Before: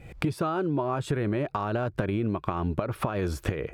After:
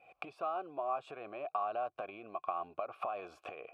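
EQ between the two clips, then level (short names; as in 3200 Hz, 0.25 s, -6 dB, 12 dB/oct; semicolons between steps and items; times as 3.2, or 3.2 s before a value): vowel filter a; low shelf 340 Hz -11.5 dB; +3.5 dB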